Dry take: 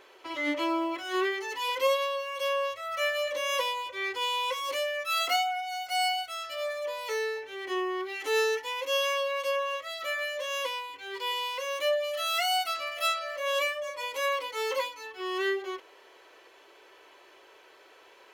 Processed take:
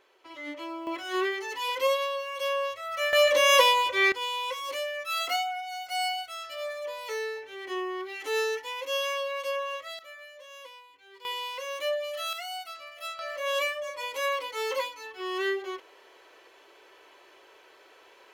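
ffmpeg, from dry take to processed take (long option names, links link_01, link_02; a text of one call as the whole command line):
ffmpeg -i in.wav -af "asetnsamples=nb_out_samples=441:pad=0,asendcmd='0.87 volume volume 0dB;3.13 volume volume 10dB;4.12 volume volume -2dB;9.99 volume volume -14.5dB;11.25 volume volume -2.5dB;12.33 volume volume -10dB;13.19 volume volume 0dB',volume=-9dB" out.wav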